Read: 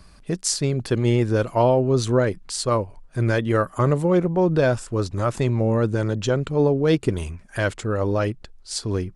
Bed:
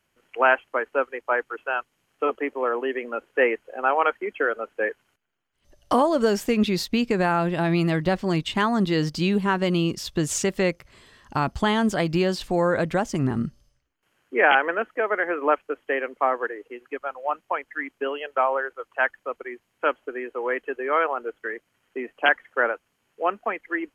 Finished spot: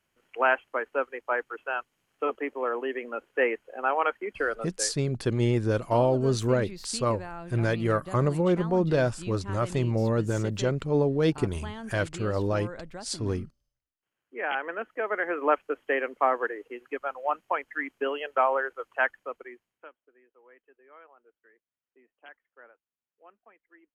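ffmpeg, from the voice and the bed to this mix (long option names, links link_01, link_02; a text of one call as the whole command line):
ffmpeg -i stem1.wav -i stem2.wav -filter_complex "[0:a]adelay=4350,volume=-5dB[link_01];[1:a]volume=12dB,afade=type=out:start_time=4.56:duration=0.36:silence=0.211349,afade=type=in:start_time=14.27:duration=1.41:silence=0.149624,afade=type=out:start_time=18.89:duration=1.01:silence=0.0354813[link_02];[link_01][link_02]amix=inputs=2:normalize=0" out.wav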